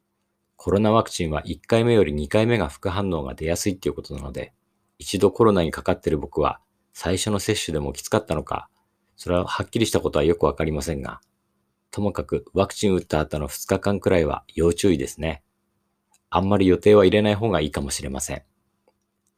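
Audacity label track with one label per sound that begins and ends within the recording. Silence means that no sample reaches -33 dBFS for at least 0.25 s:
0.600000	4.450000	sound
5.010000	6.550000	sound
6.970000	8.620000	sound
9.200000	11.160000	sound
11.930000	15.360000	sound
16.320000	18.380000	sound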